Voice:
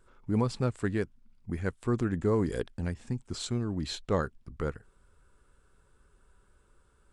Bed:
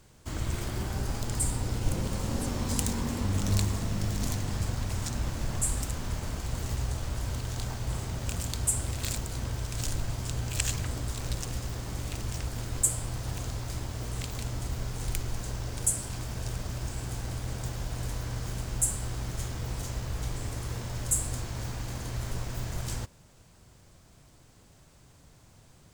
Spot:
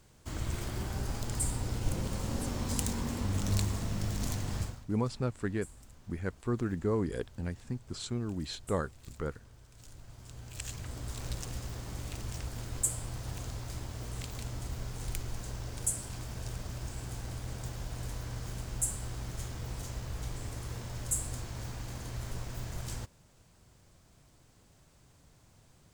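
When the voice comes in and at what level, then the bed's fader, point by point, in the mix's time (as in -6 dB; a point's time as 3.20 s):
4.60 s, -3.5 dB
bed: 4.62 s -3.5 dB
4.87 s -23 dB
9.72 s -23 dB
11.17 s -5 dB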